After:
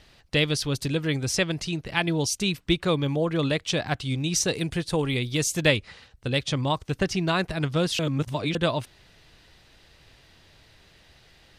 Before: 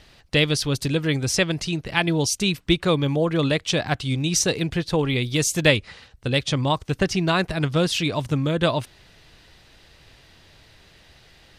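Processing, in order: 4.53–5.19 bell 9200 Hz +10 dB 0.73 oct; 7.99–8.55 reverse; gain -3.5 dB

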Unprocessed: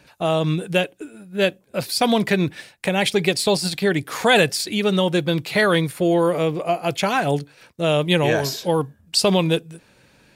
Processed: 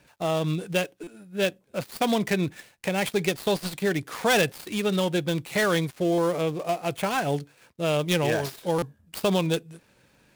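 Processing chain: switching dead time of 0.084 ms; stuck buffer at 1.03/6.14/8.78, samples 256, times 6; gain -5.5 dB

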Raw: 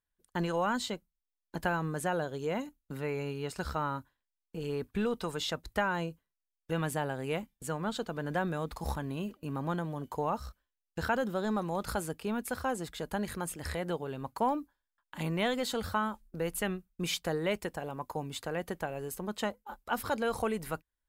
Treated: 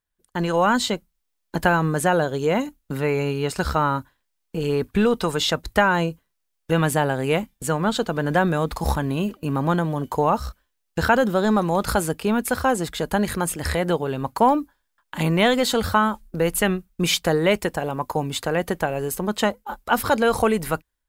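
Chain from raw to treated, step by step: AGC gain up to 8 dB; gain +4.5 dB

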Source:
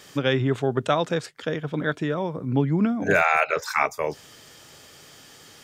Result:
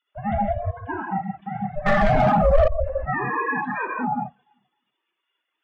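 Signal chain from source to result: sine-wave speech; echo with dull and thin repeats by turns 0.129 s, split 1300 Hz, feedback 51%, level -13 dB; vibrato 12 Hz 11 cents; 0.54–1.08 low shelf 490 Hz -11 dB; 3.4–3.83 steep high-pass 350 Hz 48 dB/oct; ring modulator 300 Hz; non-linear reverb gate 0.23 s flat, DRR -3 dB; 1.86–2.68 sample leveller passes 5; reverb removal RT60 0.51 s; limiter -15.5 dBFS, peak gain reduction 10 dB; spectral expander 1.5:1; gain +6 dB

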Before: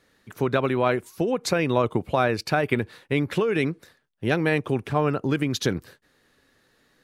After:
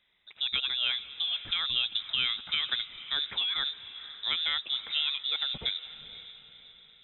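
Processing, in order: on a send: diffused feedback echo 0.498 s, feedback 46%, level -14 dB; on the sum: inverted band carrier 3800 Hz; gain -8 dB

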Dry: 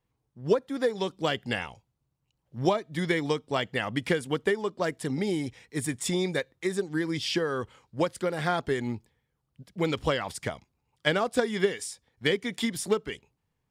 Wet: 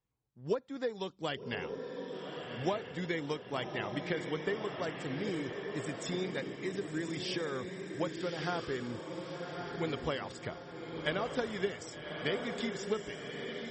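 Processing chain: diffused feedback echo 1.167 s, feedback 47%, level -4.5 dB; gain -8.5 dB; MP3 32 kbps 48000 Hz

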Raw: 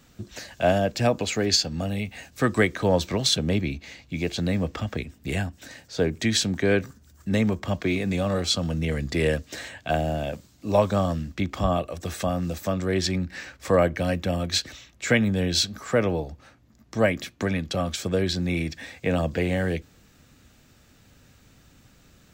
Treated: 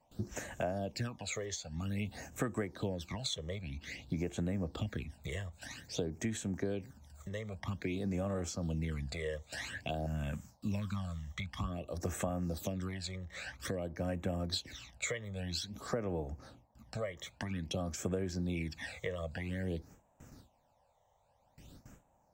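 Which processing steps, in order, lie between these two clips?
gate with hold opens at -44 dBFS; 10.06–11.59 band shelf 500 Hz -14 dB; compressor 10:1, threshold -33 dBFS, peak gain reduction 18.5 dB; phaser stages 12, 0.51 Hz, lowest notch 250–4600 Hz; band noise 510–960 Hz -74 dBFS

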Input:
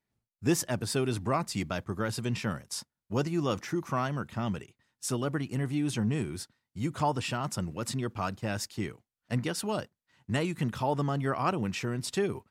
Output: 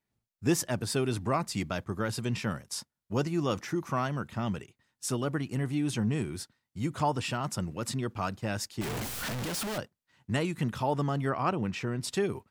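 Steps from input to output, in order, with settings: 8.81–9.78 infinite clipping; 11.29–12.03 high shelf 6100 Hz -11 dB

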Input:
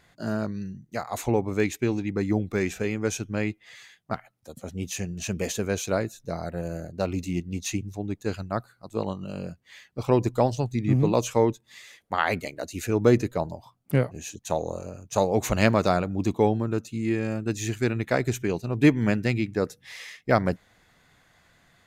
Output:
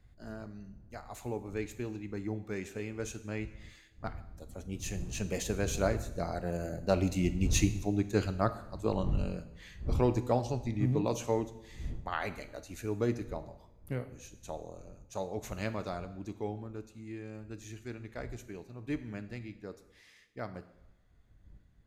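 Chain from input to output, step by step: wind noise 84 Hz -37 dBFS; Doppler pass-by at 7.66, 6 m/s, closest 7.7 m; two-slope reverb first 0.83 s, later 3.1 s, from -24 dB, DRR 10 dB

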